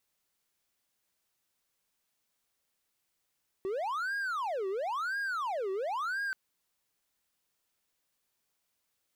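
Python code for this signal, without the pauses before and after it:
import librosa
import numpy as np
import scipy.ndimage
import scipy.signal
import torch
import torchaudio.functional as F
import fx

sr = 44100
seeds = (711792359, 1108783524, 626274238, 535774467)

y = fx.siren(sr, length_s=2.68, kind='wail', low_hz=379.0, high_hz=1630.0, per_s=0.97, wave='triangle', level_db=-29.0)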